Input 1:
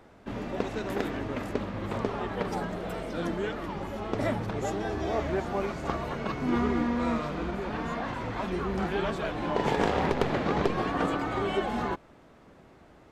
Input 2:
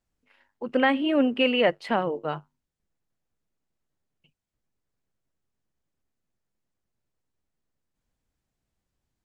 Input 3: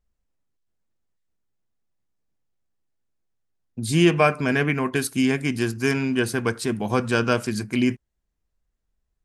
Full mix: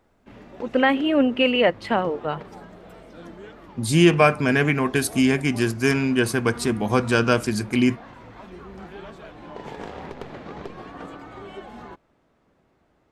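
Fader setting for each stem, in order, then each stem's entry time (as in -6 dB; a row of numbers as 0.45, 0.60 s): -10.0, +3.0, +2.0 dB; 0.00, 0.00, 0.00 s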